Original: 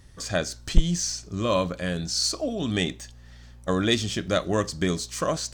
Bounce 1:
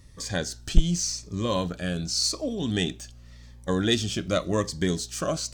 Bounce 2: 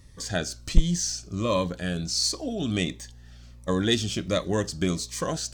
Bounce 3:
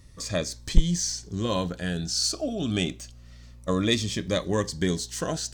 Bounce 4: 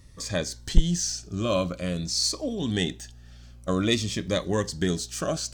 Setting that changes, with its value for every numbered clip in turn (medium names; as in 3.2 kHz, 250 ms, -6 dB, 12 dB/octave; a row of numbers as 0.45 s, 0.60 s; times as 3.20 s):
Shepard-style phaser, rate: 0.9 Hz, 1.4 Hz, 0.28 Hz, 0.51 Hz